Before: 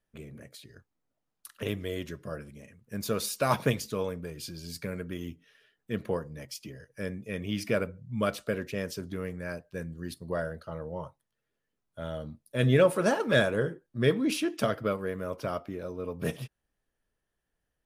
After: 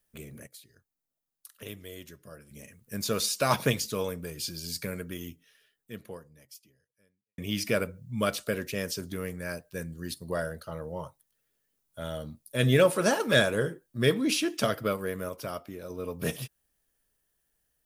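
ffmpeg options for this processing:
-filter_complex "[0:a]asplit=6[s0][s1][s2][s3][s4][s5];[s0]atrim=end=0.472[s6];[s1]atrim=start=0.468:end=2.512,asetpts=PTS-STARTPTS,volume=0.299[s7];[s2]atrim=start=2.508:end=7.38,asetpts=PTS-STARTPTS,afade=t=out:st=2.372:d=2.5:c=qua[s8];[s3]atrim=start=7.38:end=15.292,asetpts=PTS-STARTPTS,afade=t=in:d=0.004:c=hsin[s9];[s4]atrim=start=15.288:end=15.902,asetpts=PTS-STARTPTS,volume=0.631[s10];[s5]atrim=start=15.898[s11];[s6][s7]acrossfade=d=0.004:c1=hsin:c2=hsin[s12];[s8][s9]concat=n=2:v=0:a=1[s13];[s12][s13]acrossfade=d=0.004:c1=hsin:c2=hsin[s14];[s14][s10]acrossfade=d=0.004:c1=hsin:c2=hsin[s15];[s15][s11]acrossfade=d=0.004:c1=hsin:c2=hsin,aemphasis=mode=production:type=75kf,acrossover=split=7100[s16][s17];[s17]acompressor=threshold=0.01:ratio=4:attack=1:release=60[s18];[s16][s18]amix=inputs=2:normalize=0"

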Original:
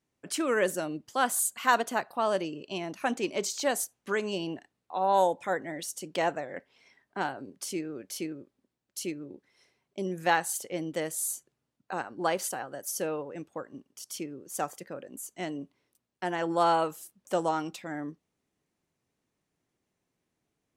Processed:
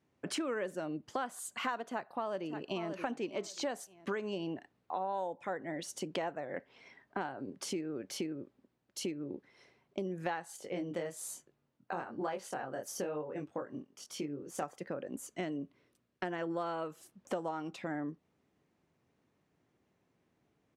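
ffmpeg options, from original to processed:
-filter_complex "[0:a]asplit=2[s0][s1];[s1]afade=t=in:st=1.83:d=0.01,afade=t=out:st=2.89:d=0.01,aecho=0:1:580|1160:0.177828|0.0355656[s2];[s0][s2]amix=inputs=2:normalize=0,asettb=1/sr,asplit=3[s3][s4][s5];[s3]atrim=end=10.564[s6];[s4]atrim=start=10.56:end=14.63,asetpts=PTS-STARTPTS,afade=t=in:d=0.004:c=qsin,afade=t=out:st=4.066:d=0.004:c=qsin,flanger=delay=19.5:depth=4.4:speed=1.1[s7];[s5]atrim=start=14.626[s8];[s6][s7]acrossfade=d=0.004:c1=hsin:c2=qsin[s9];[s9][s8]acrossfade=d=0.004:c1=qsin:c2=hsin,asettb=1/sr,asplit=3[s10][s11][s12];[s10]atrim=end=15.254[s13];[s11]atrim=start=15.25:end=16.98,asetpts=PTS-STARTPTS,afade=t=in:d=0.004:c=qsin,afade=t=out:st=1.726:d=0.004:c=qsin,equalizer=f=840:w=3.7:g=-7.5[s14];[s12]atrim=start=16.976[s15];[s13][s14]acrossfade=d=0.004:c1=hsin:c2=qsin[s16];[s16][s15]acrossfade=d=0.004:c1=qsin:c2=hsin,highpass=56,aemphasis=mode=reproduction:type=75fm,acompressor=threshold=0.00891:ratio=6,volume=2"

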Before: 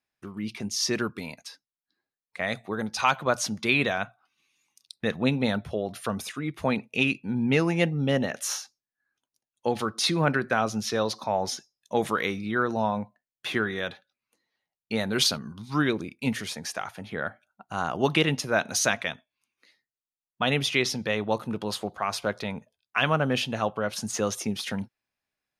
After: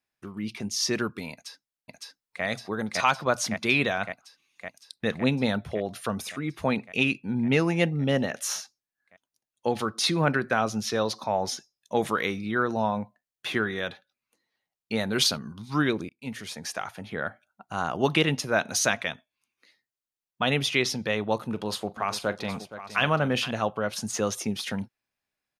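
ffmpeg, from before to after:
-filter_complex "[0:a]asplit=2[s0][s1];[s1]afade=t=in:st=1.32:d=0.01,afade=t=out:st=2.44:d=0.01,aecho=0:1:560|1120|1680|2240|2800|3360|3920|4480|5040|5600|6160|6720:1|0.75|0.5625|0.421875|0.316406|0.237305|0.177979|0.133484|0.100113|0.0750847|0.0563135|0.0422351[s2];[s0][s2]amix=inputs=2:normalize=0,asettb=1/sr,asplit=3[s3][s4][s5];[s3]atrim=end=21.504[s6];[s4]atrim=start=21.5:end=23.51,asetpts=PTS-STARTPTS,afade=t=in:d=0.004:c=qsin,afade=t=out:st=2.006:d=0.004:c=qsin,aecho=1:1:41|469|770:0.133|0.211|0.211,atrim=end_sample=88641[s7];[s5]atrim=start=23.506[s8];[s6][s7]acrossfade=d=0.004:c1=hsin:c2=qsin[s9];[s9][s8]acrossfade=d=0.004:c1=qsin:c2=hsin,asplit=2[s10][s11];[s10]atrim=end=16.09,asetpts=PTS-STARTPTS,afade=t=out:st=16.086:d=0.004:c=hsin:silence=0.0841395[s12];[s11]atrim=start=16.09,asetpts=PTS-STARTPTS,afade=t=in:d=0.62:silence=0.0841395[s13];[s12][s13]concat=n=2:v=0:a=1"

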